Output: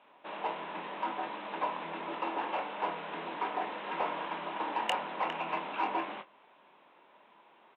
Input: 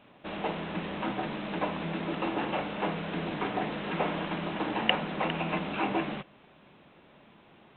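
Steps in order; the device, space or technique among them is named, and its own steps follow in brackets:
intercom (band-pass filter 430–3,800 Hz; parametric band 960 Hz +9 dB 0.32 octaves; soft clipping −16 dBFS, distortion −20 dB; double-tracking delay 24 ms −9.5 dB)
level −4 dB

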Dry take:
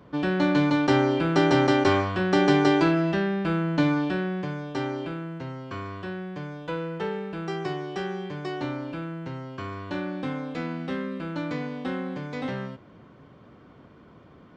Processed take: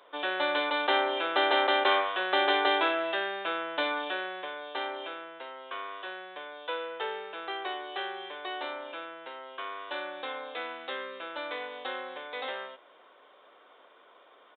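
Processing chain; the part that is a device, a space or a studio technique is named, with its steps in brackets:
musical greeting card (downsampling to 8,000 Hz; high-pass filter 510 Hz 24 dB per octave; parametric band 3,700 Hz +10 dB 0.45 octaves)

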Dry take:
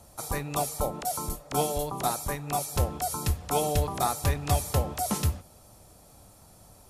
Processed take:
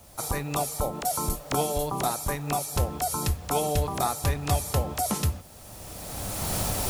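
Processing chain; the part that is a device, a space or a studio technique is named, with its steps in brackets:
cheap recorder with automatic gain (white noise bed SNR 30 dB; camcorder AGC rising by 20 dB per second)

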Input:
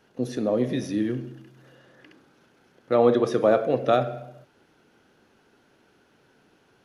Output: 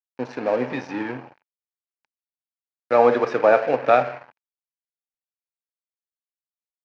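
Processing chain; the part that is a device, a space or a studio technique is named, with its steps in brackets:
high-shelf EQ 5,700 Hz −7.5 dB
blown loudspeaker (dead-zone distortion −38.5 dBFS; loudspeaker in its box 200–5,400 Hz, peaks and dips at 210 Hz −8 dB, 350 Hz −7 dB, 880 Hz +9 dB, 1,600 Hz +7 dB, 2,400 Hz +8 dB, 3,500 Hz −7 dB)
level +4 dB

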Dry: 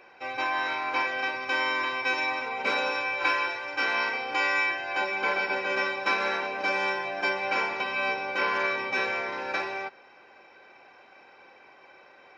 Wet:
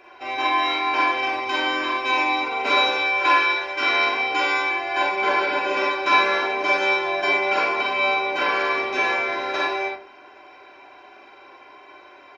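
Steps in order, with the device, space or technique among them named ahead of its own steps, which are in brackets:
microphone above a desk (comb filter 2.9 ms, depth 62%; convolution reverb RT60 0.40 s, pre-delay 41 ms, DRR −2 dB)
level +2 dB

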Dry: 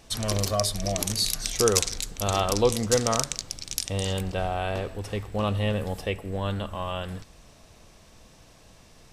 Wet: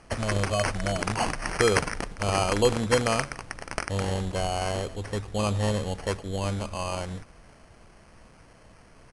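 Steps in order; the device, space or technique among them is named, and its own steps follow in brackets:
crushed at another speed (tape speed factor 2×; decimation without filtering 6×; tape speed factor 0.5×)

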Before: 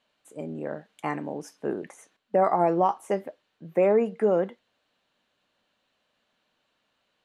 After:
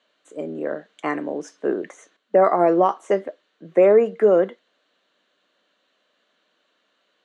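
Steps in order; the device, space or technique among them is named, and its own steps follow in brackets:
television speaker (loudspeaker in its box 210–7,000 Hz, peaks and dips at 230 Hz −6 dB, 850 Hz −9 dB, 2,500 Hz −5 dB, 5,100 Hz −7 dB)
level +8 dB

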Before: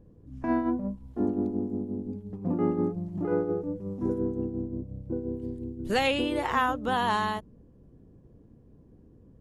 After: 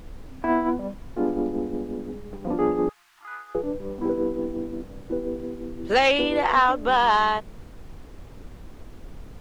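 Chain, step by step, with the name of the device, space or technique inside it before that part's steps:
aircraft cabin announcement (band-pass filter 390–4,200 Hz; soft clipping −17.5 dBFS, distortion −20 dB; brown noise bed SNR 14 dB)
0:02.89–0:03.55: inverse Chebyshev high-pass filter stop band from 590 Hz, stop band 40 dB
level +9 dB

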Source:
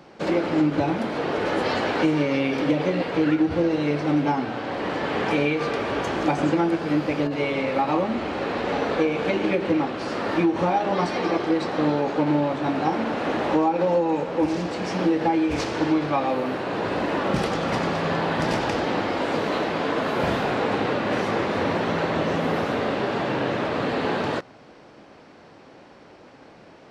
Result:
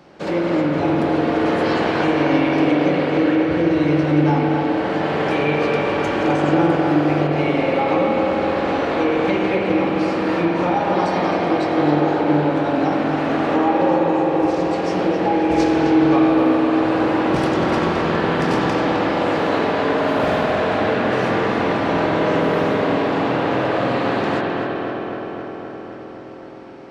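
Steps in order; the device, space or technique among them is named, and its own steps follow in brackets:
dub delay into a spring reverb (feedback echo with a low-pass in the loop 260 ms, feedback 76%, low-pass 3,700 Hz, level −5 dB; spring reverb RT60 3 s, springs 47 ms, chirp 60 ms, DRR 0 dB)

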